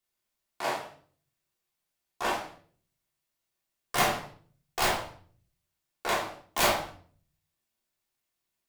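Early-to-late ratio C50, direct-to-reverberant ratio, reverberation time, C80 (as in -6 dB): 6.0 dB, -6.0 dB, 0.45 s, 11.5 dB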